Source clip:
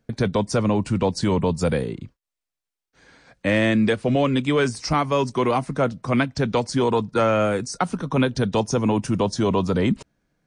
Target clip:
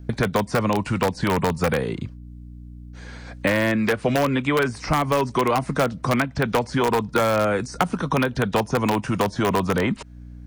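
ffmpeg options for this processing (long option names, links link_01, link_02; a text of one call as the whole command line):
ffmpeg -i in.wav -filter_complex "[0:a]acrossover=split=2700[link_01][link_02];[link_02]acompressor=threshold=-47dB:ratio=4:attack=1:release=60[link_03];[link_01][link_03]amix=inputs=2:normalize=0,aeval=exprs='val(0)+0.00447*(sin(2*PI*60*n/s)+sin(2*PI*2*60*n/s)/2+sin(2*PI*3*60*n/s)/3+sin(2*PI*4*60*n/s)/4+sin(2*PI*5*60*n/s)/5)':channel_layout=same,asplit=2[link_04][link_05];[link_05]aeval=exprs='(mod(3.98*val(0)+1,2)-1)/3.98':channel_layout=same,volume=-7dB[link_06];[link_04][link_06]amix=inputs=2:normalize=0,acrossover=split=710|2300[link_07][link_08][link_09];[link_07]acompressor=threshold=-29dB:ratio=4[link_10];[link_08]acompressor=threshold=-29dB:ratio=4[link_11];[link_09]acompressor=threshold=-39dB:ratio=4[link_12];[link_10][link_11][link_12]amix=inputs=3:normalize=0,volume=6dB" out.wav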